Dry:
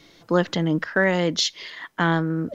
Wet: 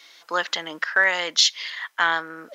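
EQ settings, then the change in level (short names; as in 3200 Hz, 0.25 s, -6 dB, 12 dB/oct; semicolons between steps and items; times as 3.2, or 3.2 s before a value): HPF 1100 Hz 12 dB/oct; +5.5 dB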